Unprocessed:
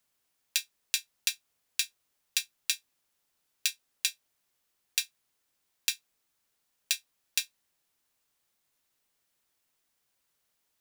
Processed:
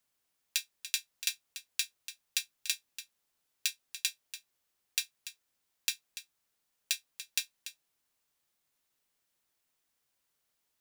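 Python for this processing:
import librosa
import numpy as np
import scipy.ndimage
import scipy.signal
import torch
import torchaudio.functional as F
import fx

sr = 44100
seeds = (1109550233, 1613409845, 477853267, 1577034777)

y = x + 10.0 ** (-12.5 / 20.0) * np.pad(x, (int(289 * sr / 1000.0), 0))[:len(x)]
y = F.gain(torch.from_numpy(y), -3.0).numpy()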